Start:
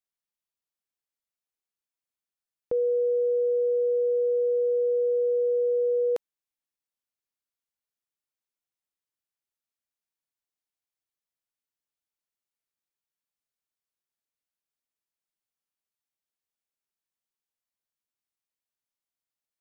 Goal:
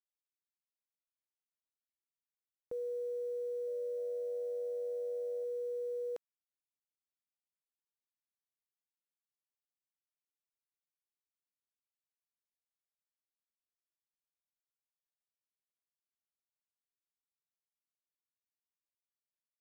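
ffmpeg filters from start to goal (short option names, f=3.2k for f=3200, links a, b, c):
-filter_complex "[0:a]alimiter=level_in=4dB:limit=-24dB:level=0:latency=1,volume=-4dB,acrusher=bits=9:mix=0:aa=0.000001,asettb=1/sr,asplit=3[a][b][c];[a]atrim=end=3.374[d];[b]atrim=start=3.37:end=5.44,asetpts=PTS-STARTPTS,afade=t=in:d=0.004:c=qsin,afade=t=out:st=2.066:d=0.004:c=qsin,asplit=4[e][f][g][h];[f]adelay=302,afreqshift=96,volume=-19dB[i];[g]adelay=604,afreqshift=192,volume=-29.2dB[j];[h]adelay=906,afreqshift=288,volume=-39.3dB[k];[e][i][j][k]amix=inputs=4:normalize=0,atrim=end_sample=91287[l];[c]atrim=start=5.436[m];[d][l]acrossfade=d=0.004:c1=hsin:c2=qsin[n];[n][m]acrossfade=d=0.004:c1=qsin:c2=hsin,volume=-7dB"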